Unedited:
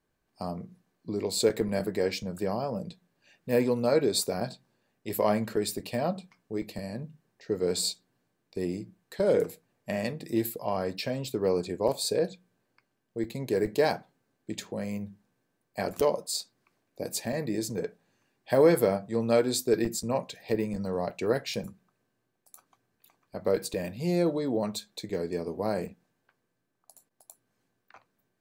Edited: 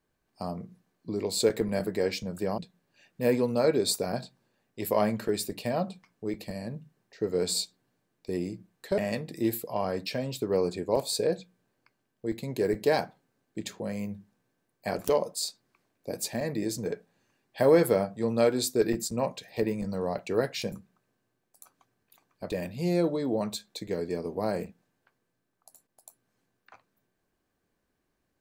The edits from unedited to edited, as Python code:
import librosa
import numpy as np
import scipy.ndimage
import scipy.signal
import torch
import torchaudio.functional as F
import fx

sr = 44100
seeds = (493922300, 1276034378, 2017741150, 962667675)

y = fx.edit(x, sr, fx.cut(start_s=2.58, length_s=0.28),
    fx.cut(start_s=9.26, length_s=0.64),
    fx.cut(start_s=23.42, length_s=0.3), tone=tone)